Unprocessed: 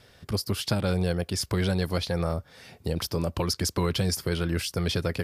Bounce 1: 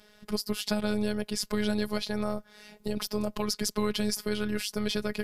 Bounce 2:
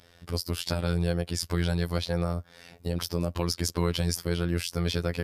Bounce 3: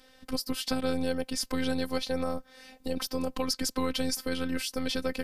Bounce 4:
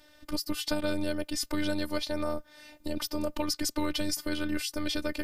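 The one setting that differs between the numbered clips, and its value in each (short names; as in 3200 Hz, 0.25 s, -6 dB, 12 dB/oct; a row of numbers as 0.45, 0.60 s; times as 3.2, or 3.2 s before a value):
robotiser, frequency: 210, 86, 260, 300 Hz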